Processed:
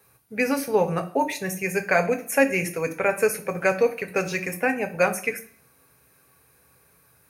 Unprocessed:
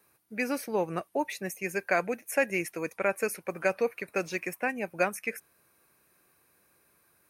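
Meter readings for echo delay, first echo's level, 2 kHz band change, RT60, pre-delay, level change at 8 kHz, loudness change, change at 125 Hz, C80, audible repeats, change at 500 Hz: no echo, no echo, +6.5 dB, 0.55 s, 3 ms, +7.5 dB, +7.0 dB, +10.5 dB, 18.5 dB, no echo, +7.5 dB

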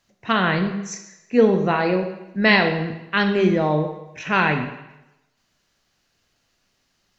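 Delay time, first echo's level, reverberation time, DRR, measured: no echo, no echo, 0.95 s, 5.5 dB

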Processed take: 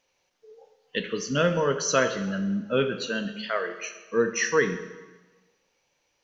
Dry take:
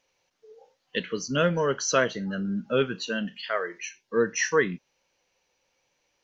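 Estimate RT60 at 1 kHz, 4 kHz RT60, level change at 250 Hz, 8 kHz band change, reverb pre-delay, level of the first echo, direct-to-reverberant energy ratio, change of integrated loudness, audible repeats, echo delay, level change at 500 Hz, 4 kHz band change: 1.2 s, 1.1 s, +1.0 dB, no reading, 8 ms, no echo, 8.0 dB, +0.5 dB, no echo, no echo, +1.0 dB, +0.5 dB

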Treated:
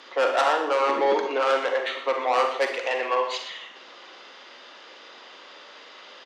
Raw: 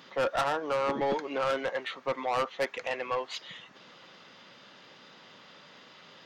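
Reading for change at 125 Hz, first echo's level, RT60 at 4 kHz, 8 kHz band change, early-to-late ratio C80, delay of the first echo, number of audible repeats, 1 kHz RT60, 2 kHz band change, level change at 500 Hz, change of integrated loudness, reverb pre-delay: under -15 dB, -12.5 dB, 0.45 s, +6.0 dB, 8.5 dB, 120 ms, 1, 0.60 s, +7.5 dB, +7.0 dB, +7.5 dB, 37 ms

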